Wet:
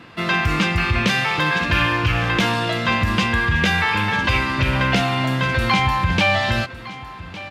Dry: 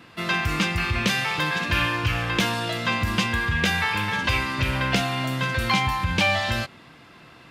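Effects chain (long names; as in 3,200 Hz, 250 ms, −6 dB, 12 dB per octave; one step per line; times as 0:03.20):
low-pass filter 3,900 Hz 6 dB per octave
in parallel at 0 dB: brickwall limiter −15.5 dBFS, peak gain reduction 7 dB
on the sum: single-tap delay 1,158 ms −16.5 dB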